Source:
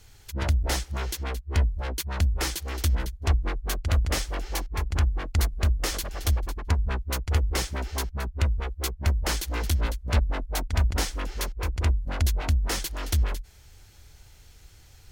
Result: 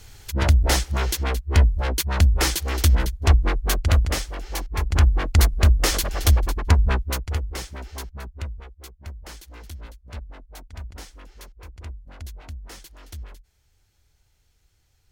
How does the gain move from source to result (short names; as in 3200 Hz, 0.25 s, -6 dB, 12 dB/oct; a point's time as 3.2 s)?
3.86 s +7 dB
4.35 s -2 dB
5.07 s +7.5 dB
6.92 s +7.5 dB
7.48 s -5 dB
8.24 s -5 dB
8.86 s -13.5 dB